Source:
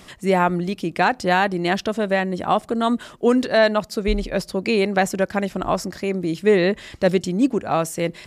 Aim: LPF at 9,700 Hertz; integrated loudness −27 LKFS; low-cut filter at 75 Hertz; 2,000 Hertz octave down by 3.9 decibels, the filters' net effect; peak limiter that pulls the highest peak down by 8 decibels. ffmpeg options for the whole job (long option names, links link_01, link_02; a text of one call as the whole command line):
ffmpeg -i in.wav -af "highpass=75,lowpass=9700,equalizer=frequency=2000:width_type=o:gain=-5,volume=-2dB,alimiter=limit=-16.5dB:level=0:latency=1" out.wav